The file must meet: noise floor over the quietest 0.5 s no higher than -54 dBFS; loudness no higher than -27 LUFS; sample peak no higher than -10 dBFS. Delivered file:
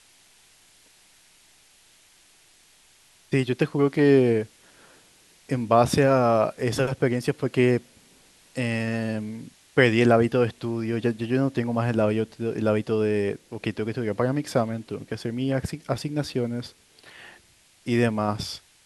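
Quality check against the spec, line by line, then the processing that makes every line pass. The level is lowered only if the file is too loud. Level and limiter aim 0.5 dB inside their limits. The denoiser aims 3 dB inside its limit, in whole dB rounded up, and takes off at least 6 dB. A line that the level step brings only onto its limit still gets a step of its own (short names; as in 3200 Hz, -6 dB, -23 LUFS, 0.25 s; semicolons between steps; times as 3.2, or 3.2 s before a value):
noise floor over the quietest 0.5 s -58 dBFS: OK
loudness -24.5 LUFS: fail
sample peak -4.0 dBFS: fail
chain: gain -3 dB; limiter -10.5 dBFS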